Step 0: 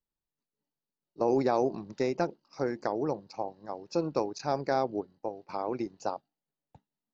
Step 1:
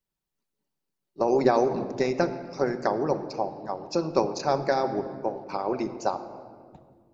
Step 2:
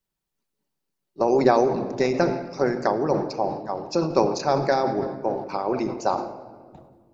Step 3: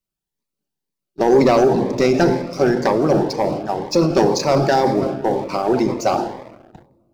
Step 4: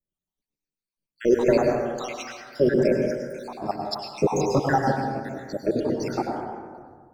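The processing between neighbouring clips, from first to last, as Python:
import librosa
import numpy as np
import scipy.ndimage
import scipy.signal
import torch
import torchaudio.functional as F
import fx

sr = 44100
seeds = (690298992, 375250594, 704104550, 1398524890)

y1 = fx.room_shoebox(x, sr, seeds[0], volume_m3=2900.0, walls='mixed', distance_m=1.1)
y1 = fx.hpss(y1, sr, part='percussive', gain_db=7)
y2 = fx.sustainer(y1, sr, db_per_s=72.0)
y2 = y2 * 10.0 ** (2.5 / 20.0)
y3 = fx.leveller(y2, sr, passes=2)
y3 = fx.notch_cascade(y3, sr, direction='rising', hz=2.0)
y3 = y3 * 10.0 ** (2.0 / 20.0)
y4 = fx.spec_dropout(y3, sr, seeds[1], share_pct=79)
y4 = fx.rev_plate(y4, sr, seeds[2], rt60_s=1.6, hf_ratio=0.3, predelay_ms=90, drr_db=1.5)
y4 = y4 * 10.0 ** (-3.0 / 20.0)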